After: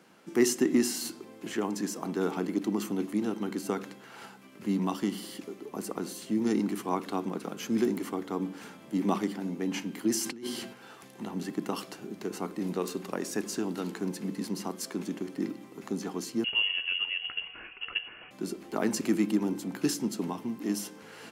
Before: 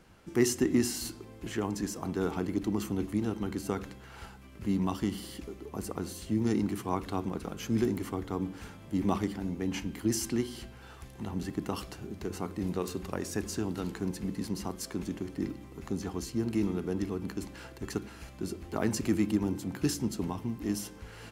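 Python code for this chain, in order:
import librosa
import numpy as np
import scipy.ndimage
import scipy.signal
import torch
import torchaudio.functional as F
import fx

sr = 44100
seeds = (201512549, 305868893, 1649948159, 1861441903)

y = scipy.signal.sosfilt(scipy.signal.butter(4, 180.0, 'highpass', fs=sr, output='sos'), x)
y = fx.over_compress(y, sr, threshold_db=-40.0, ratio=-1.0, at=(10.24, 10.72), fade=0.02)
y = fx.freq_invert(y, sr, carrier_hz=3100, at=(16.44, 18.31))
y = y * 10.0 ** (2.0 / 20.0)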